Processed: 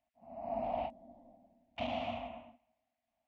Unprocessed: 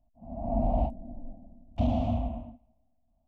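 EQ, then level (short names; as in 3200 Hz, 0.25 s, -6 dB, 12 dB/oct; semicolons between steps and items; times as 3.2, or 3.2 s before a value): band-pass 2100 Hz, Q 2.2; +11.5 dB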